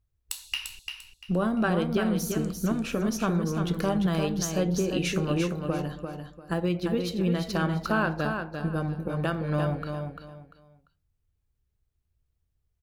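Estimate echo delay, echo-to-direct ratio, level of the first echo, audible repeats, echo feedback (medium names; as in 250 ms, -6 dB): 345 ms, -5.5 dB, -6.0 dB, 3, 26%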